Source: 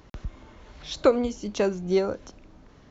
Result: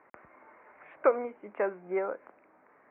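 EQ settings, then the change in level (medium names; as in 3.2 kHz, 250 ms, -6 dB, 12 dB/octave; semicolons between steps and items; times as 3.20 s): high-pass 600 Hz 12 dB/octave; steep low-pass 2.3 kHz 72 dB/octave; distance through air 74 m; 0.0 dB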